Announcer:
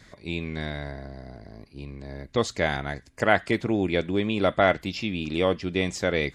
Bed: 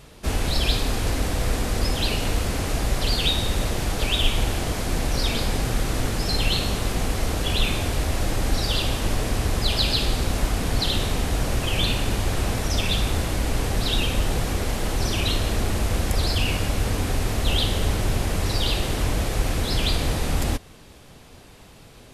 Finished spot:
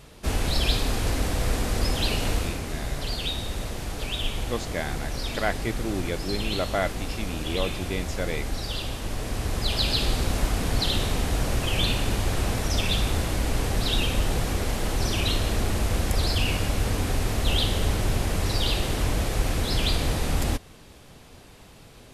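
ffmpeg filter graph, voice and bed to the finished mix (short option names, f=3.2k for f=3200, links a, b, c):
-filter_complex "[0:a]adelay=2150,volume=-6dB[a];[1:a]volume=4.5dB,afade=t=out:st=2.33:d=0.28:silence=0.501187,afade=t=in:st=9.08:d=1:silence=0.501187[b];[a][b]amix=inputs=2:normalize=0"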